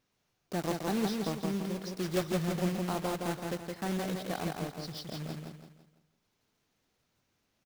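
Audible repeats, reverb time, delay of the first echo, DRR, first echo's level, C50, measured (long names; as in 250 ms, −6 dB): 4, no reverb audible, 167 ms, no reverb audible, −3.5 dB, no reverb audible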